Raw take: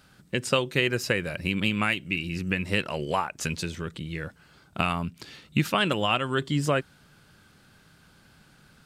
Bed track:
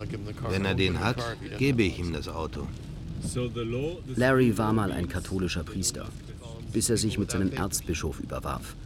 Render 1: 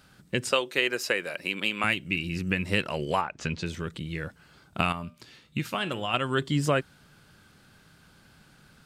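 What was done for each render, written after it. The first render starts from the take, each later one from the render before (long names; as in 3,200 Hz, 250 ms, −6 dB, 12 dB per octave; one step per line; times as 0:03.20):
0:00.51–0:01.84: high-pass filter 380 Hz
0:03.21–0:03.66: high-frequency loss of the air 130 metres
0:04.92–0:06.14: tuned comb filter 120 Hz, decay 0.38 s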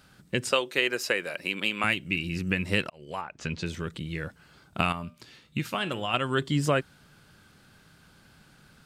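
0:02.90–0:03.62: fade in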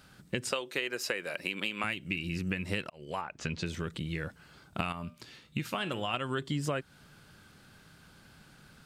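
downward compressor 4 to 1, threshold −30 dBFS, peak gain reduction 10 dB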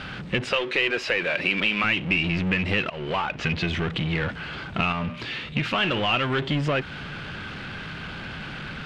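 power curve on the samples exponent 0.5
low-pass with resonance 2,800 Hz, resonance Q 1.8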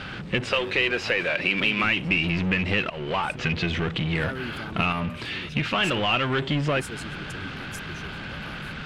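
mix in bed track −13.5 dB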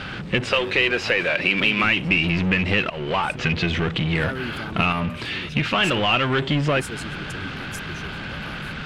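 level +3.5 dB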